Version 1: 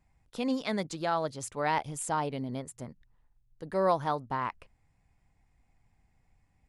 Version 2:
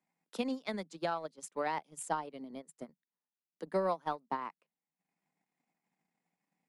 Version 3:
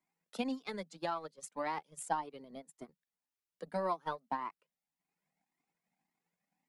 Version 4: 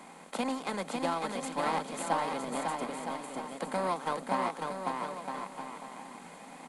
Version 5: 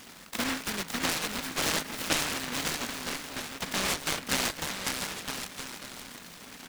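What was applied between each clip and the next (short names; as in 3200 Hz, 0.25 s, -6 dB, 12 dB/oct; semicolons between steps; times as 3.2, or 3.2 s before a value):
steep high-pass 160 Hz 96 dB/oct; transient shaper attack +10 dB, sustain -11 dB; gain -9 dB
cascading flanger rising 1.8 Hz; gain +3 dB
per-bin compression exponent 0.4; bouncing-ball echo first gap 0.55 s, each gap 0.75×, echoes 5
noise-modulated delay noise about 1500 Hz, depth 0.49 ms; gain +1.5 dB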